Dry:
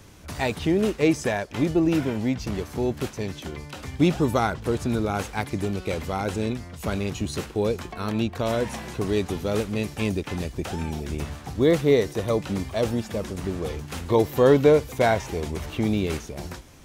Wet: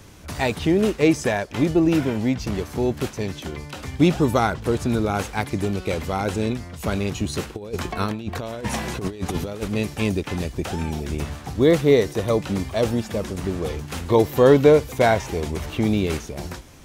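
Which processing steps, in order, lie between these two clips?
0:07.55–0:09.68: compressor whose output falls as the input rises −29 dBFS, ratio −0.5
level +3 dB

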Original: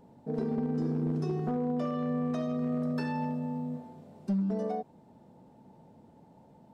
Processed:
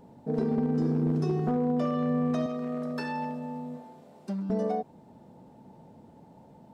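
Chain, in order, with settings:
0:02.46–0:04.50: high-pass filter 460 Hz 6 dB per octave
level +4 dB

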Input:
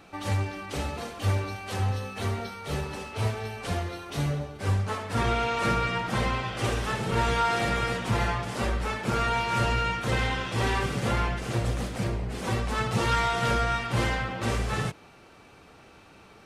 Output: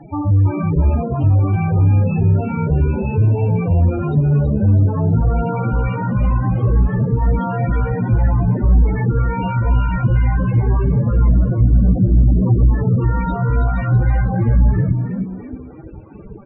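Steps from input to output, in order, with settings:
fuzz pedal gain 41 dB, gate −50 dBFS
downward compressor, threshold −21 dBFS, peak gain reduction 7.5 dB
spectral peaks only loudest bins 8
spectral tilt −3.5 dB per octave
notch filter 1,300 Hz, Q 9.3
echo with shifted repeats 325 ms, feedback 34%, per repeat +65 Hz, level −8 dB
level −1.5 dB

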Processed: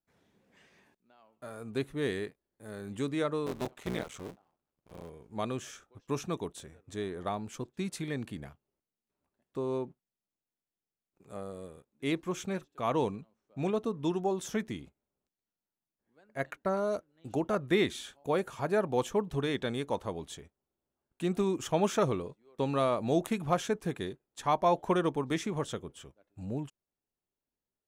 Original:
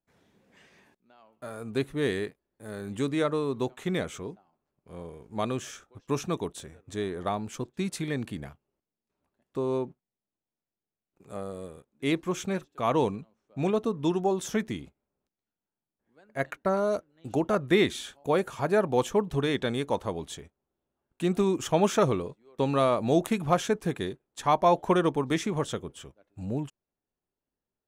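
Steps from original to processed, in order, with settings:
0:03.46–0:05.10: sub-harmonics by changed cycles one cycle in 3, muted
level −4.5 dB

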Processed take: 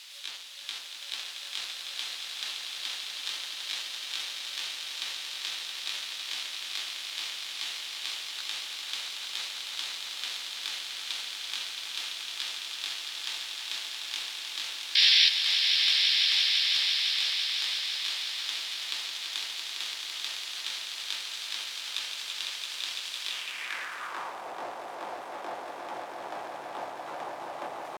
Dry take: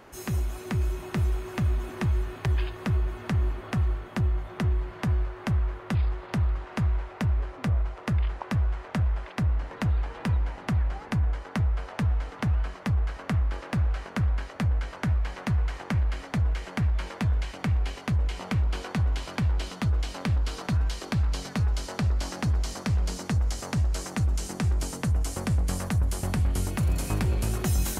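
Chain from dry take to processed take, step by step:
each half-wave held at its own peak
meter weighting curve A
reverb reduction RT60 0.85 s
high-shelf EQ 2,900 Hz +8 dB
sound drawn into the spectrogram noise, 0:14.97–0:15.31, 1,000–3,700 Hz −14 dBFS
pitch shifter +7.5 semitones
bit-depth reduction 6 bits, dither triangular
echo that builds up and dies away 168 ms, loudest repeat 5, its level −7 dB
band-pass filter sweep 3,600 Hz → 740 Hz, 0:23.28–0:24.47
level −2 dB

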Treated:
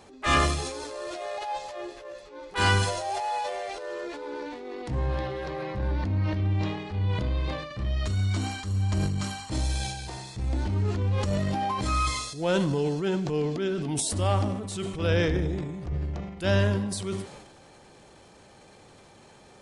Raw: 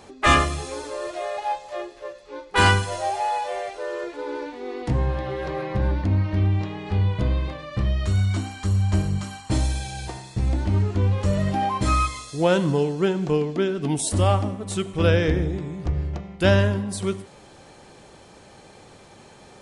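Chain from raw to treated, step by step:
transient designer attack −7 dB, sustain +8 dB
dynamic equaliser 4,700 Hz, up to +4 dB, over −47 dBFS, Q 1.3
level −5 dB

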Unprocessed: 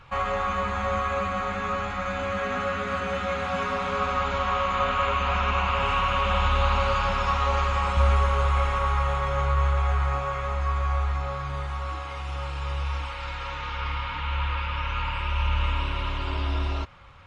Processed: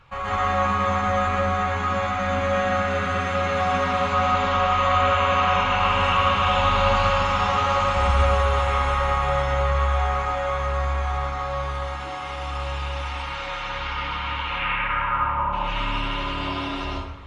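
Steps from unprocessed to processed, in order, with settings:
0:14.46–0:15.52: low-pass with resonance 2,700 Hz → 810 Hz, resonance Q 2.4
convolution reverb RT60 0.75 s, pre-delay 114 ms, DRR −8 dB
level −3.5 dB

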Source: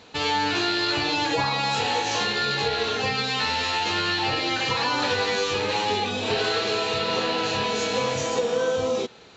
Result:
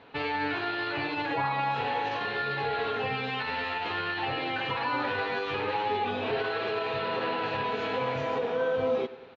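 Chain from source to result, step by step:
low-shelf EQ 420 Hz −5.5 dB
comb filter 7.3 ms, depth 38%
brickwall limiter −18.5 dBFS, peak gain reduction 6.5 dB
Bessel low-pass filter 2,000 Hz, order 4
repeating echo 95 ms, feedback 59%, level −18 dB

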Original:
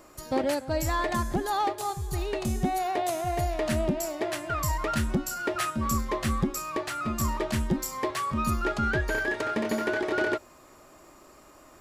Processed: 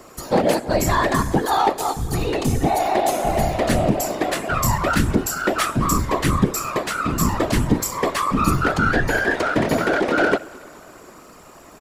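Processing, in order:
repeating echo 216 ms, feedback 59%, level −23 dB
random phases in short frames
level +8.5 dB

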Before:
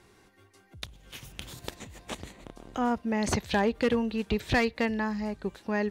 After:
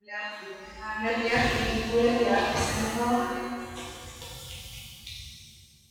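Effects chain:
played backwards from end to start
noise reduction from a noise print of the clip's start 27 dB
reverb with rising layers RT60 1.8 s, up +7 semitones, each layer −8 dB, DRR −9.5 dB
level −6.5 dB

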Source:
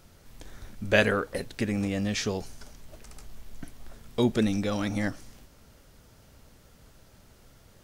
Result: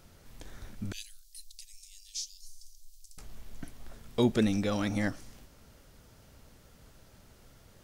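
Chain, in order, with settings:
0:00.92–0:03.18: inverse Chebyshev band-stop filter 140–930 Hz, stop band 80 dB
level −1.5 dB

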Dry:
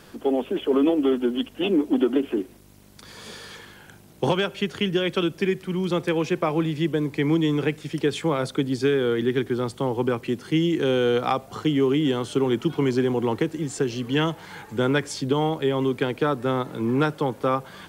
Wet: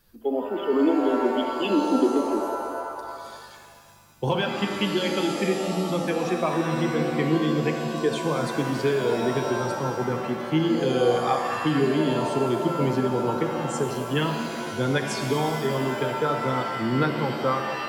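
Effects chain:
spectral dynamics exaggerated over time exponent 1.5
reverb with rising layers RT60 2 s, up +7 semitones, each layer −2 dB, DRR 4.5 dB

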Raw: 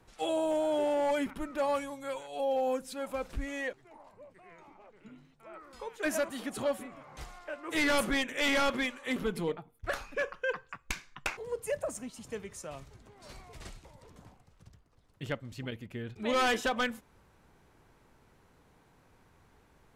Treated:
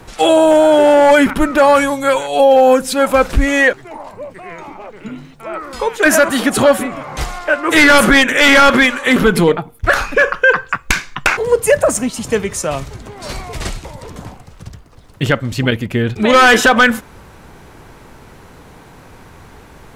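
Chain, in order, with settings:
dynamic equaliser 1,500 Hz, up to +7 dB, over −49 dBFS, Q 2.5
boost into a limiter +24.5 dB
level −1 dB

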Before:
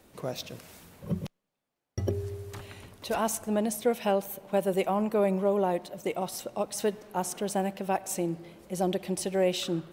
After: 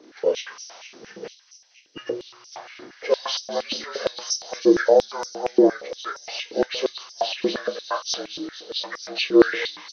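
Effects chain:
partials spread apart or drawn together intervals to 78%
double-tracking delay 32 ms −9.5 dB
delay with a high-pass on its return 231 ms, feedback 78%, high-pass 4,400 Hz, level −7 dB
high-pass on a step sequencer 8.6 Hz 320–5,600 Hz
level +5.5 dB

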